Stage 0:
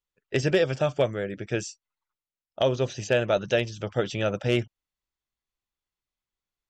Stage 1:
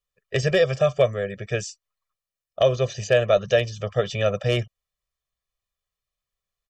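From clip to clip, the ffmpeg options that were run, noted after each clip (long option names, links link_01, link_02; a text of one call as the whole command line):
ffmpeg -i in.wav -af "aecho=1:1:1.7:0.97" out.wav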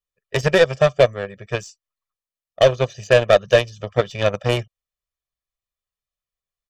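ffmpeg -i in.wav -af "aeval=exprs='0.501*(cos(1*acos(clip(val(0)/0.501,-1,1)))-cos(1*PI/2))+0.0282*(cos(2*acos(clip(val(0)/0.501,-1,1)))-cos(2*PI/2))+0.00398*(cos(6*acos(clip(val(0)/0.501,-1,1)))-cos(6*PI/2))+0.0501*(cos(7*acos(clip(val(0)/0.501,-1,1)))-cos(7*PI/2))':channel_layout=same,volume=5dB" out.wav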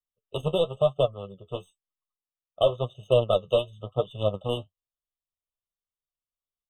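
ffmpeg -i in.wav -af "flanger=delay=6.3:depth=6.4:regen=44:speed=0.99:shape=triangular,asuperstop=centerf=5500:order=8:qfactor=2.3,afftfilt=real='re*eq(mod(floor(b*sr/1024/1300),2),0)':imag='im*eq(mod(floor(b*sr/1024/1300),2),0)':win_size=1024:overlap=0.75,volume=-4dB" out.wav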